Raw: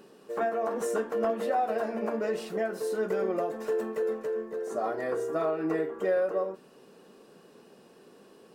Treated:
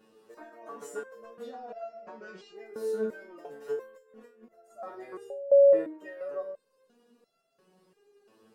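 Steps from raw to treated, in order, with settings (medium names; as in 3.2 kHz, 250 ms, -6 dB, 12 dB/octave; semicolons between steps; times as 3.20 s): 1.42–2.56 s: steep low-pass 6.9 kHz; 3.84–4.45 s: compressor with a negative ratio -39 dBFS, ratio -1; flange 0.51 Hz, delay 6.2 ms, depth 3.6 ms, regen +54%; 5.30–5.73 s: bleep 560 Hz -11.5 dBFS; resonator arpeggio 2.9 Hz 110–680 Hz; trim +7 dB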